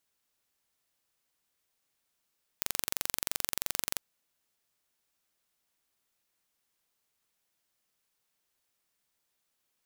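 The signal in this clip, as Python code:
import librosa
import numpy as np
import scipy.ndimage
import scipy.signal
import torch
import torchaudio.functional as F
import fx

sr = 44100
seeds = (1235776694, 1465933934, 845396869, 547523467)

y = 10.0 ** (-3.0 / 20.0) * (np.mod(np.arange(round(1.39 * sr)), round(sr / 23.0)) == 0)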